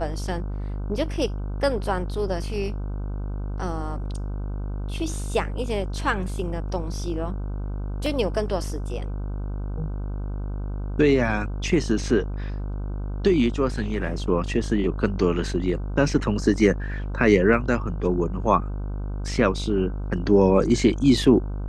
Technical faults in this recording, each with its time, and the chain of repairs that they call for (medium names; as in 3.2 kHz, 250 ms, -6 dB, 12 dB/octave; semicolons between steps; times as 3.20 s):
buzz 50 Hz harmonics 31 -29 dBFS
8.06 s: dropout 2.7 ms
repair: de-hum 50 Hz, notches 31; interpolate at 8.06 s, 2.7 ms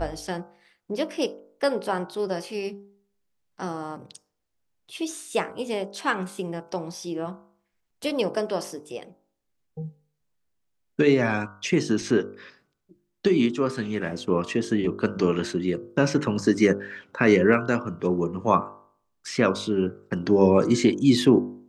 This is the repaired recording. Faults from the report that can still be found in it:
nothing left